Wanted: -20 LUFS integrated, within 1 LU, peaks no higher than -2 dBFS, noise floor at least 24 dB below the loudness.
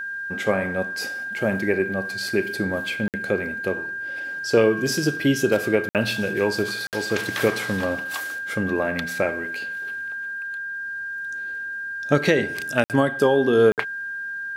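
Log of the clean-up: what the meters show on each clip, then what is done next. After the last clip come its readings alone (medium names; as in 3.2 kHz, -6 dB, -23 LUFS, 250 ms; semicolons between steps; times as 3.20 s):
dropouts 5; longest dropout 58 ms; steady tone 1.6 kHz; tone level -28 dBFS; loudness -23.5 LUFS; peak level -3.0 dBFS; loudness target -20.0 LUFS
-> interpolate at 3.08/5.89/6.87/12.84/13.72 s, 58 ms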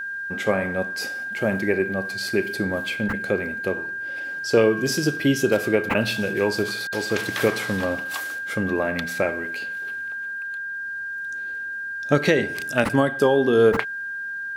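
dropouts 0; steady tone 1.6 kHz; tone level -28 dBFS
-> band-stop 1.6 kHz, Q 30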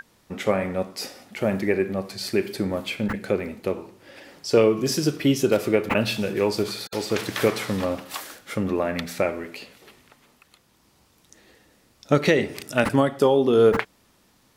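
steady tone not found; loudness -23.5 LUFS; peak level -3.5 dBFS; loudness target -20.0 LUFS
-> trim +3.5 dB; peak limiter -2 dBFS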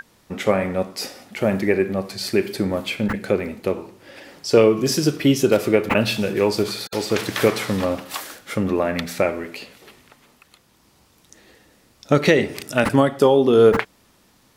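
loudness -20.0 LUFS; peak level -2.0 dBFS; noise floor -58 dBFS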